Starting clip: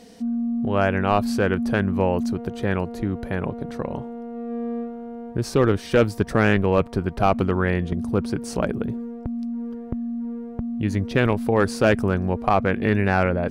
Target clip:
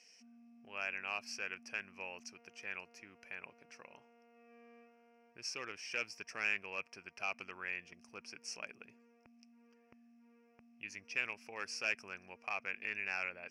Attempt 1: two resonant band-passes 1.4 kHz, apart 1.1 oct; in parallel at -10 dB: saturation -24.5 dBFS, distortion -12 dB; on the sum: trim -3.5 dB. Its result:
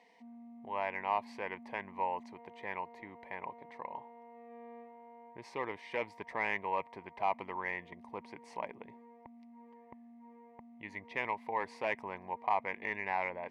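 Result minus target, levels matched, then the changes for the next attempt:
1 kHz band +11.0 dB
change: two resonant band-passes 3.7 kHz, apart 1.1 oct

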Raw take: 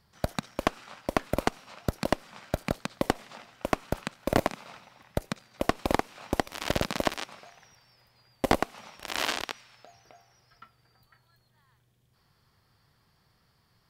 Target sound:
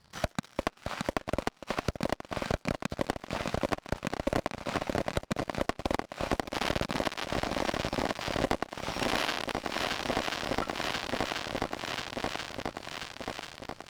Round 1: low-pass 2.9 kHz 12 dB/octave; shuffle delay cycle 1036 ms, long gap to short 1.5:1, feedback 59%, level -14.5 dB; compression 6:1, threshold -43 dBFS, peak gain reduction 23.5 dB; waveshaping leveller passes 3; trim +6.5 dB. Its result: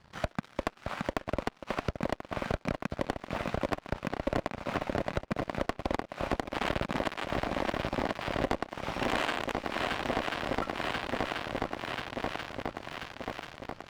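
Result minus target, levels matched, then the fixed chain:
8 kHz band -7.0 dB
low-pass 7.6 kHz 12 dB/octave; shuffle delay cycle 1036 ms, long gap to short 1.5:1, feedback 59%, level -14.5 dB; compression 6:1, threshold -43 dBFS, peak gain reduction 23.5 dB; waveshaping leveller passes 3; trim +6.5 dB

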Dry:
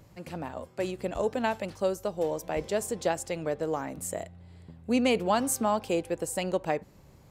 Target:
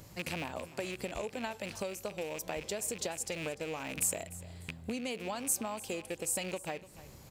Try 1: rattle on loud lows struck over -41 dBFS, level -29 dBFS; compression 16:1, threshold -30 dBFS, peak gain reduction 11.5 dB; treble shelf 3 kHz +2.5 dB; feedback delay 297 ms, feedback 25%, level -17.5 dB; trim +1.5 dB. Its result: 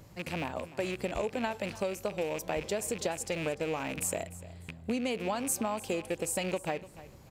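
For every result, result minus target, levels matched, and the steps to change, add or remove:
compression: peak gain reduction -6 dB; 8 kHz band -4.5 dB
change: compression 16:1, threshold -36.5 dBFS, peak gain reduction 17.5 dB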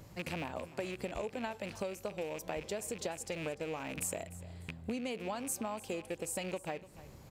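8 kHz band -4.0 dB
change: treble shelf 3 kHz +10 dB

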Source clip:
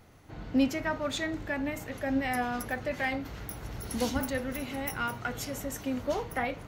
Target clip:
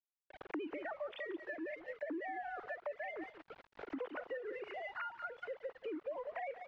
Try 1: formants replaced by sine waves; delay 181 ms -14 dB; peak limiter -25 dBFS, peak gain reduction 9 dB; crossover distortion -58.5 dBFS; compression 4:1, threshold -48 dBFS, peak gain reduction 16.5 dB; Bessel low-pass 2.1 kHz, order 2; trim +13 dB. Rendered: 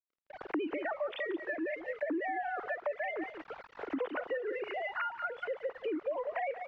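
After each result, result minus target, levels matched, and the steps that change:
compression: peak gain reduction -7 dB; crossover distortion: distortion -6 dB
change: compression 4:1, threshold -57.5 dBFS, peak gain reduction 23.5 dB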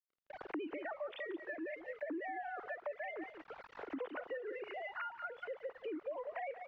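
crossover distortion: distortion -6 dB
change: crossover distortion -52.5 dBFS

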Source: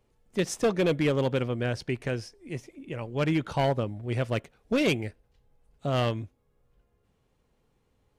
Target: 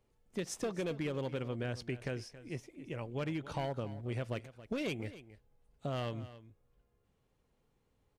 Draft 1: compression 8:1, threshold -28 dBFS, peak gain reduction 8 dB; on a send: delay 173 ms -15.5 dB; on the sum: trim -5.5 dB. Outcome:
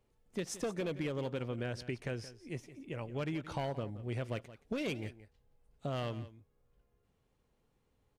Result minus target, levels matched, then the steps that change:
echo 102 ms early
change: delay 275 ms -15.5 dB

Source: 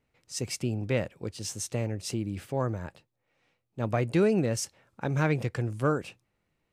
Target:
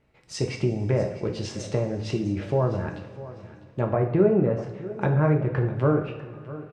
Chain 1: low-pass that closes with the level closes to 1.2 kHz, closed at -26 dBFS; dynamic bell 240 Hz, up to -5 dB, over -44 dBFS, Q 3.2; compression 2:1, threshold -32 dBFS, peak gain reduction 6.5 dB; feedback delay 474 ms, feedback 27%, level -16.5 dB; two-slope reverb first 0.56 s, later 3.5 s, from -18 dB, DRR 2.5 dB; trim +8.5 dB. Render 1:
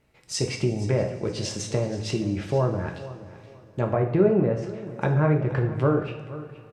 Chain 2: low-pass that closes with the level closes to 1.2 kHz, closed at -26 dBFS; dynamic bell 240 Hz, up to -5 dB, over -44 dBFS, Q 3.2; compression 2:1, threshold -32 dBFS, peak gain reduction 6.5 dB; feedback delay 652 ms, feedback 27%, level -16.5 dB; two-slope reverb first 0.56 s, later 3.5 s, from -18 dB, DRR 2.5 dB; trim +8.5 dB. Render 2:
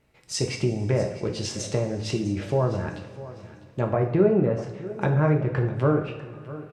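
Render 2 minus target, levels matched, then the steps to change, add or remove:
4 kHz band +5.0 dB
add after dynamic bell: low-pass 2.9 kHz 6 dB/octave

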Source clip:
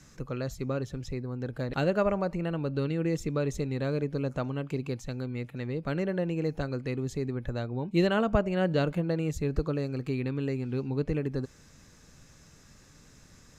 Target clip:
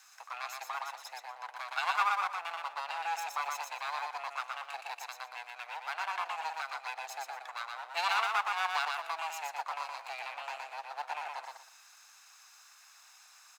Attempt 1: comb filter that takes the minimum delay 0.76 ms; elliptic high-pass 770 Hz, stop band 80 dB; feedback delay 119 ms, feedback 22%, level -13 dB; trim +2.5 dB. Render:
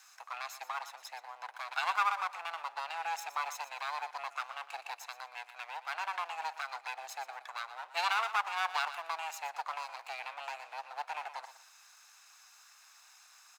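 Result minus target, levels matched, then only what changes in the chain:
echo-to-direct -9.5 dB
change: feedback delay 119 ms, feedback 22%, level -3.5 dB

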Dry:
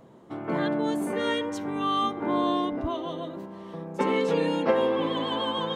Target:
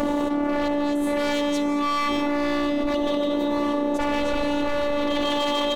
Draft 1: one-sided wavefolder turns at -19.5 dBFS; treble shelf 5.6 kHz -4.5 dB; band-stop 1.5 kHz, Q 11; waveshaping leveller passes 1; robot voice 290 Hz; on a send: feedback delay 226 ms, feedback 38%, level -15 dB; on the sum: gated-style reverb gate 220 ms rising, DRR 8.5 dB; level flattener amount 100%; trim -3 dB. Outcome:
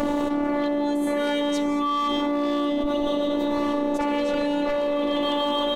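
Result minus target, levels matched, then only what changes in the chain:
one-sided wavefolder: distortion -10 dB
change: one-sided wavefolder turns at -25.5 dBFS

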